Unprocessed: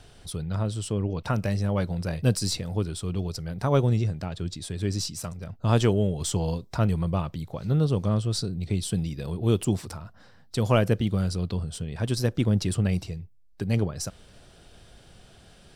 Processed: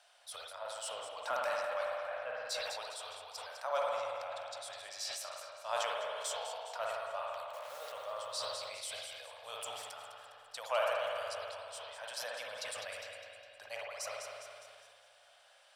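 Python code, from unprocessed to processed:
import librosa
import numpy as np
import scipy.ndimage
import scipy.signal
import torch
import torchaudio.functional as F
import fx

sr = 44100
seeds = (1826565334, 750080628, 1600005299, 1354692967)

y = fx.delta_hold(x, sr, step_db=-36.5, at=(7.47, 7.92))
y = scipy.signal.sosfilt(scipy.signal.ellip(4, 1.0, 40, 580.0, 'highpass', fs=sr, output='sos'), y)
y = fx.leveller(y, sr, passes=1, at=(0.77, 1.49))
y = fx.lowpass(y, sr, hz=2300.0, slope=24, at=(1.99, 2.49), fade=0.02)
y = fx.echo_split(y, sr, split_hz=760.0, low_ms=288, high_ms=204, feedback_pct=52, wet_db=-11.5)
y = fx.rev_spring(y, sr, rt60_s=2.4, pass_ms=(54,), chirp_ms=60, drr_db=-1.0)
y = fx.sustainer(y, sr, db_per_s=23.0)
y = y * 10.0 ** (-8.5 / 20.0)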